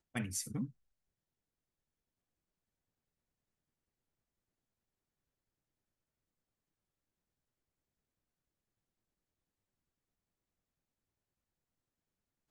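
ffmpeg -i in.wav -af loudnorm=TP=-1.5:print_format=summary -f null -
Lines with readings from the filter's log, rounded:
Input Integrated:    -40.0 LUFS
Input True Peak:     -23.0 dBTP
Input LRA:             0.0 LU
Input Threshold:     -50.0 LUFS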